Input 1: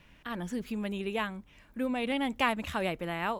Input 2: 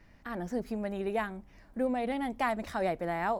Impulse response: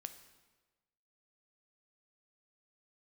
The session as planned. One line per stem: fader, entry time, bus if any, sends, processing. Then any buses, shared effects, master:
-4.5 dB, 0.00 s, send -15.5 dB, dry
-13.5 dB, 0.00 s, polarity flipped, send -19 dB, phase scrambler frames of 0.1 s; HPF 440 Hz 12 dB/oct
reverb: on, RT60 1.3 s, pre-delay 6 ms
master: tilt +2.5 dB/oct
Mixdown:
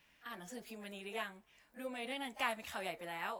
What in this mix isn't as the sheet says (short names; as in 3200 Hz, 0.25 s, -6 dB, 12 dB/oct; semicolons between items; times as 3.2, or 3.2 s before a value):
stem 1 -4.5 dB -> -12.0 dB; stem 2: polarity flipped